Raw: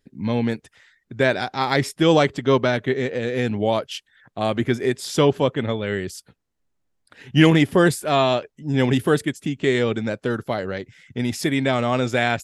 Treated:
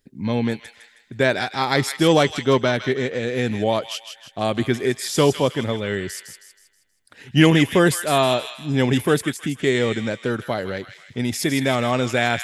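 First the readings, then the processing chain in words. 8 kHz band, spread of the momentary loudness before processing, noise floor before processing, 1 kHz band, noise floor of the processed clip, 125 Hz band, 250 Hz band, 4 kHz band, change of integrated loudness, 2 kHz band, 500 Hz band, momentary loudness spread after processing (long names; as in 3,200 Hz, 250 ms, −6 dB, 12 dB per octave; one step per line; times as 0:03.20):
+5.0 dB, 10 LU, −72 dBFS, +0.5 dB, −59 dBFS, 0.0 dB, 0.0 dB, +2.5 dB, +0.5 dB, +1.0 dB, 0.0 dB, 10 LU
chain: high-shelf EQ 6,400 Hz +7 dB
on a send: delay with a high-pass on its return 159 ms, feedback 43%, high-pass 1,600 Hz, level −7 dB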